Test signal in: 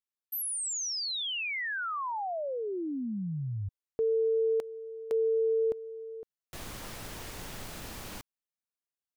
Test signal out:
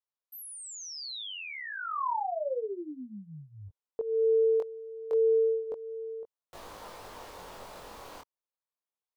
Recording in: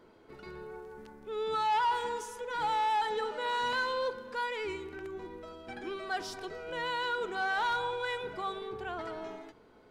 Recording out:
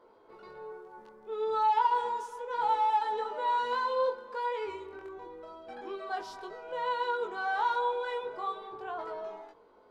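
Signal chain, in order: chorus 0.31 Hz, delay 19.5 ms, depth 3.5 ms; graphic EQ 125/500/1000/4000 Hz -4/+10/+12/+4 dB; gain -7 dB

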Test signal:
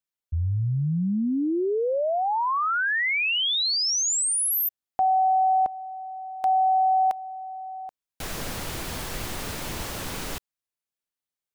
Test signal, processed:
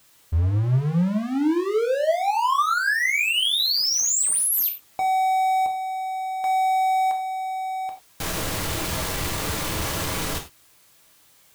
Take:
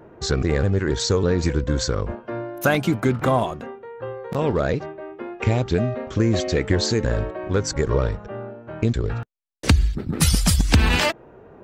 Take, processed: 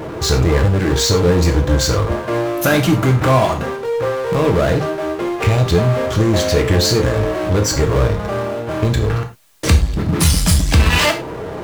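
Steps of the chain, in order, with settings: power-law curve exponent 0.5; non-linear reverb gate 0.13 s falling, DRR 2.5 dB; gain -2.5 dB

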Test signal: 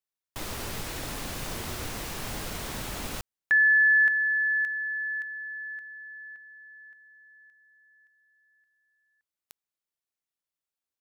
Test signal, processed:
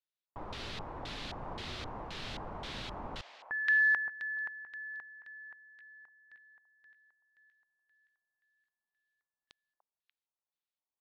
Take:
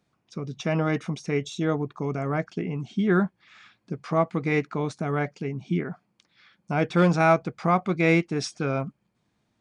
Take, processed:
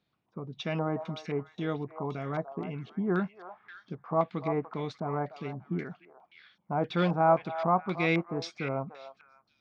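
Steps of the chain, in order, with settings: delay with a stepping band-pass 0.293 s, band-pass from 820 Hz, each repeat 1.4 oct, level -6.5 dB; LFO low-pass square 1.9 Hz 950–3800 Hz; gain -7.5 dB

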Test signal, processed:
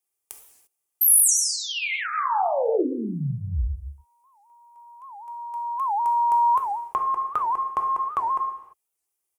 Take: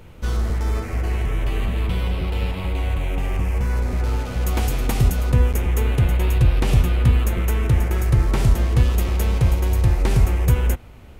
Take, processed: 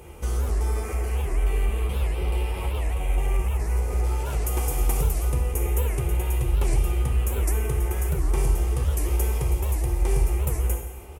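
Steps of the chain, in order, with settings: comb 2.5 ms, depth 41%; compressor 2.5:1, threshold -26 dBFS; fifteen-band EQ 100 Hz -11 dB, 250 Hz -7 dB, 1600 Hz -8 dB, 4000 Hz -10 dB, 10000 Hz +8 dB; non-linear reverb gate 0.37 s falling, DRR 1.5 dB; dynamic EQ 3600 Hz, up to -4 dB, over -45 dBFS, Q 1.3; HPF 48 Hz; record warp 78 rpm, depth 250 cents; gain +3 dB

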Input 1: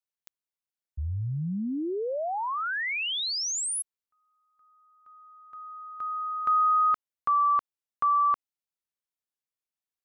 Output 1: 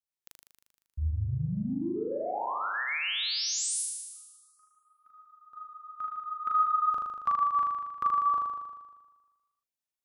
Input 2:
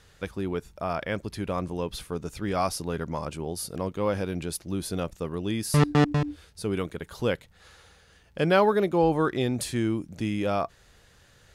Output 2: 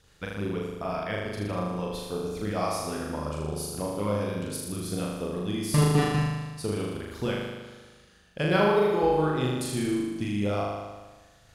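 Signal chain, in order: LFO notch sine 7.1 Hz 340–2100 Hz; transient shaper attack +5 dB, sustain -1 dB; flutter echo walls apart 6.7 m, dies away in 1.3 s; gain -5.5 dB

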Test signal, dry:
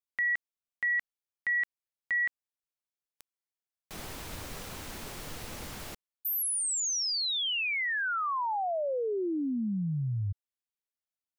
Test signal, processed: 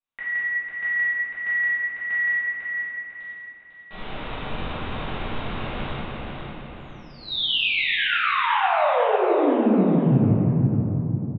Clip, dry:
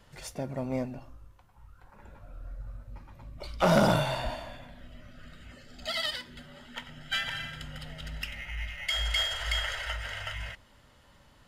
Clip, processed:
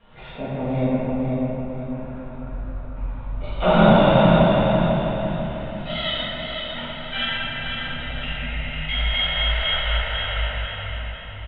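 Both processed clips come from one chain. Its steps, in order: dynamic EQ 1300 Hz, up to -4 dB, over -44 dBFS, Q 0.82; rippled Chebyshev low-pass 3800 Hz, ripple 3 dB; on a send: feedback echo 0.499 s, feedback 40%, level -5.5 dB; on the sum: shoebox room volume 140 m³, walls hard, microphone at 1.7 m

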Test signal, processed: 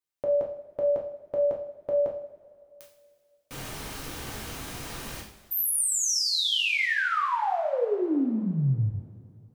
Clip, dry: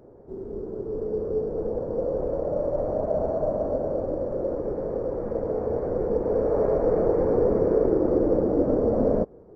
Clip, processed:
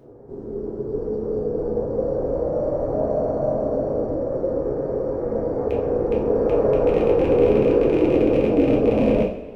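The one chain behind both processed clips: rattling part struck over -26 dBFS, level -26 dBFS; two-slope reverb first 0.48 s, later 2.5 s, from -18 dB, DRR -2 dB

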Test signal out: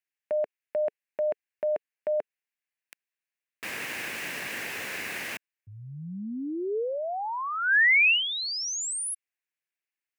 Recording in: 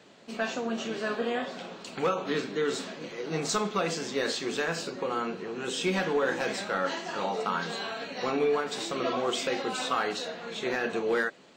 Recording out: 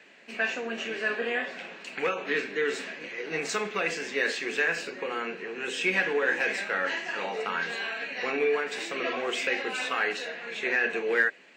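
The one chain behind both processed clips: dynamic EQ 440 Hz, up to +4 dB, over -42 dBFS, Q 3.8; HPF 220 Hz 12 dB/oct; band shelf 2100 Hz +12 dB 1 oct; gain -3.5 dB

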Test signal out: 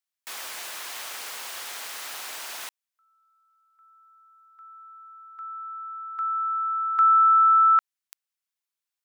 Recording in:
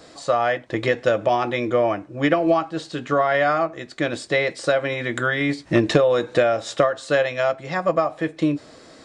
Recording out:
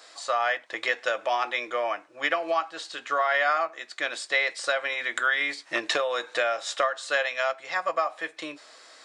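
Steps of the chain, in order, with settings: HPF 970 Hz 12 dB/oct

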